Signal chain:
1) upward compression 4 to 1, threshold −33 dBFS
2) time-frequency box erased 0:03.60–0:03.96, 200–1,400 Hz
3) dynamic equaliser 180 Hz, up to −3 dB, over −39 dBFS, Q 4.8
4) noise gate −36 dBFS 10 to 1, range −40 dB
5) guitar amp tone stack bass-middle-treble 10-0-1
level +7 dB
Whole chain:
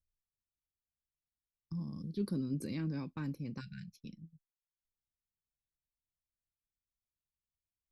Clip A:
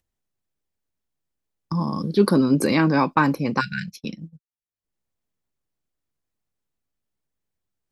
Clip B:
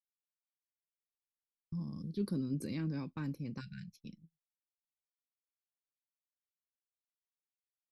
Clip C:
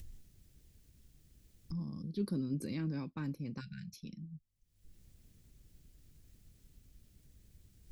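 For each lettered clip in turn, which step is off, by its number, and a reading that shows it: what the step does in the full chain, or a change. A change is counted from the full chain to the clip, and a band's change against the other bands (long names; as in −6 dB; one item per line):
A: 5, 1 kHz band +11.5 dB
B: 1, change in momentary loudness spread −2 LU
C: 4, change in momentary loudness spread −2 LU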